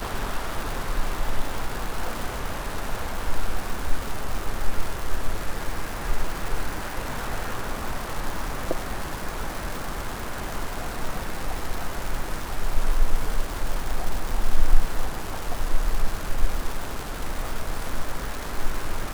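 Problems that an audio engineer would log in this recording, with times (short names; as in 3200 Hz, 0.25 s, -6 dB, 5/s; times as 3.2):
crackle 410/s -27 dBFS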